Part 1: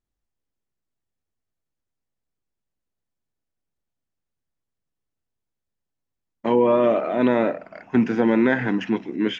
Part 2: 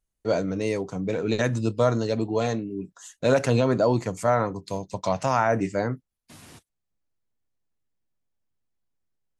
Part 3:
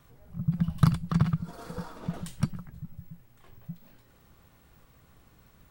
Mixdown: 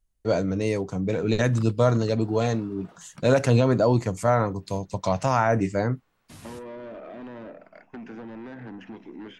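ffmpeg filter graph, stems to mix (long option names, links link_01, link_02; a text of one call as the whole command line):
ffmpeg -i stem1.wav -i stem2.wav -i stem3.wav -filter_complex "[0:a]acrossover=split=490|1300[link_01][link_02][link_03];[link_01]acompressor=threshold=-22dB:ratio=4[link_04];[link_02]acompressor=threshold=-31dB:ratio=4[link_05];[link_03]acompressor=threshold=-41dB:ratio=4[link_06];[link_04][link_05][link_06]amix=inputs=3:normalize=0,agate=range=-33dB:threshold=-39dB:ratio=3:detection=peak,volume=-7.5dB[link_07];[1:a]lowshelf=frequency=100:gain=10.5,volume=0dB[link_08];[2:a]highpass=frequency=660:poles=1,aemphasis=mode=reproduction:type=50kf,adelay=750,volume=-5.5dB[link_09];[link_07][link_09]amix=inputs=2:normalize=0,asoftclip=type=tanh:threshold=-31.5dB,acompressor=threshold=-37dB:ratio=6,volume=0dB[link_10];[link_08][link_10]amix=inputs=2:normalize=0" out.wav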